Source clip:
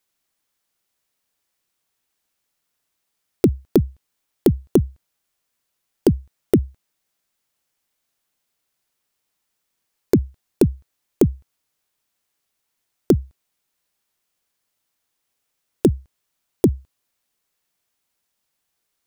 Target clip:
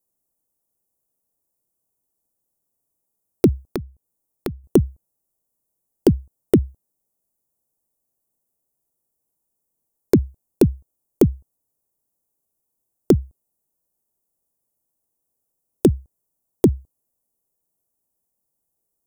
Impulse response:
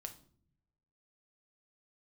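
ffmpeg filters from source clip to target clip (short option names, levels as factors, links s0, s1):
-filter_complex "[0:a]asettb=1/sr,asplit=3[s0][s1][s2];[s0]atrim=end=3.674[s3];[s1]atrim=start=3.67:end=4.64,asetpts=PTS-STARTPTS,afade=t=in:d=0.004:c=qsin,afade=t=out:st=0.966:d=0.004:c=qsin,acompressor=threshold=0.0501:ratio=6[s4];[s2]atrim=start=4.636[s5];[s3][s4]acrossfade=d=0.004:c1=hsin:c2=qsin[s6];[s6][s5]acrossfade=d=0.004:c1=qsin:c2=hsin,acrossover=split=850|7300[s7][s8][s9];[s8]aeval=exprs='val(0)*gte(abs(val(0)),0.00708)':c=same[s10];[s7][s10][s9]amix=inputs=3:normalize=0,volume=1.12"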